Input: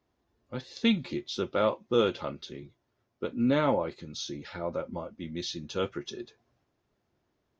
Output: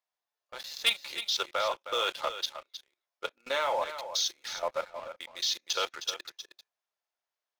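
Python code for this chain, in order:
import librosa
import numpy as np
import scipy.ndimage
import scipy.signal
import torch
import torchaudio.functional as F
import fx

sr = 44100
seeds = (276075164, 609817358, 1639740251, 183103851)

y = scipy.signal.sosfilt(scipy.signal.butter(4, 620.0, 'highpass', fs=sr, output='sos'), x)
y = fx.high_shelf(y, sr, hz=2100.0, db=8.0)
y = fx.level_steps(y, sr, step_db=12)
y = fx.leveller(y, sr, passes=3)
y = y + 10.0 ** (-11.0 / 20.0) * np.pad(y, (int(313 * sr / 1000.0), 0))[:len(y)]
y = F.gain(torch.from_numpy(y), -3.5).numpy()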